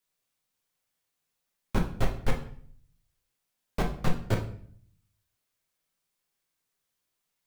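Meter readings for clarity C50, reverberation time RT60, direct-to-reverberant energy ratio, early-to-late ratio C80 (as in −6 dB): 9.0 dB, 0.55 s, 1.5 dB, 13.0 dB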